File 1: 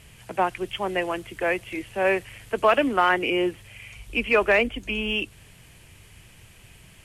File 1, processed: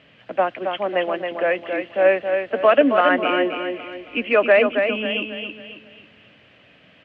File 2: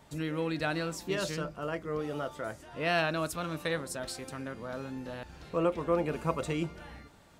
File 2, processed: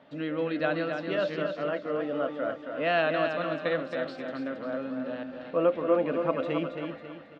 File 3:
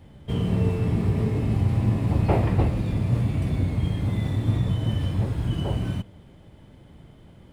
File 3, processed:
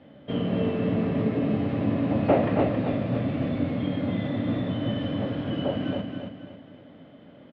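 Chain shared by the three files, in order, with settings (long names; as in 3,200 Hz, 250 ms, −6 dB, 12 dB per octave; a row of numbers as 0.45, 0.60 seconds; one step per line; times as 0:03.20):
loudspeaker in its box 240–3,300 Hz, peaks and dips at 270 Hz +7 dB, 380 Hz −6 dB, 580 Hz +7 dB, 920 Hz −7 dB, 2,300 Hz −4 dB
repeating echo 272 ms, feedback 39%, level −6 dB
level +3 dB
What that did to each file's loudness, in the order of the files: +4.0, +4.0, −2.0 LU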